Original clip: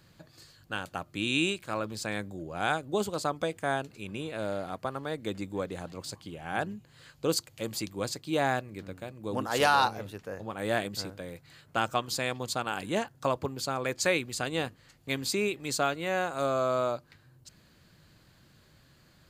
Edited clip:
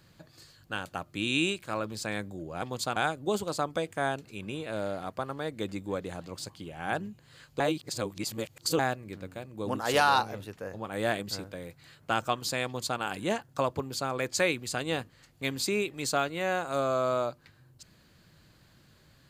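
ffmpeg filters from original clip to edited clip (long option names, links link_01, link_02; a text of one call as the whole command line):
ffmpeg -i in.wav -filter_complex "[0:a]asplit=5[link_01][link_02][link_03][link_04][link_05];[link_01]atrim=end=2.622[link_06];[link_02]atrim=start=12.308:end=12.652[link_07];[link_03]atrim=start=2.618:end=7.262[link_08];[link_04]atrim=start=7.258:end=8.452,asetpts=PTS-STARTPTS,areverse[link_09];[link_05]atrim=start=8.448[link_10];[link_06][link_07]acrossfade=duration=0.004:curve1=hsin:curve2=hsin[link_11];[link_11][link_08]acrossfade=duration=0.004:curve1=hsin:curve2=hsin[link_12];[link_12][link_09]acrossfade=duration=0.004:curve1=hsin:curve2=hsin[link_13];[link_13][link_10]acrossfade=duration=0.004:curve1=hsin:curve2=hsin" out.wav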